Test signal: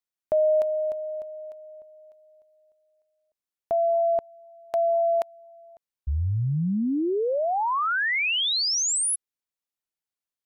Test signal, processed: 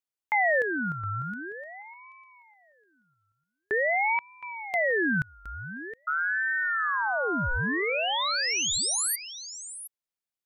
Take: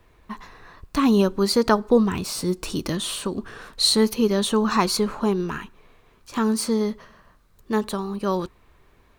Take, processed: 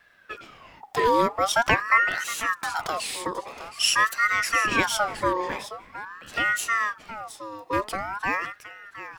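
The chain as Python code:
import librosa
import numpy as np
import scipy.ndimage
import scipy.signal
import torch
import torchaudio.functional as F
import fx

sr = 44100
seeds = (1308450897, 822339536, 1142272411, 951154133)

y = x + 10.0 ** (-13.0 / 20.0) * np.pad(x, (int(717 * sr / 1000.0), 0))[:len(x)]
y = fx.ring_lfo(y, sr, carrier_hz=1200.0, swing_pct=40, hz=0.46)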